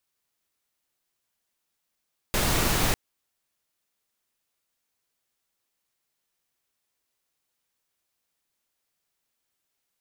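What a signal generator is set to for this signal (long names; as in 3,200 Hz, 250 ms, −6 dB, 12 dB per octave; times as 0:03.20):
noise pink, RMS −23.5 dBFS 0.60 s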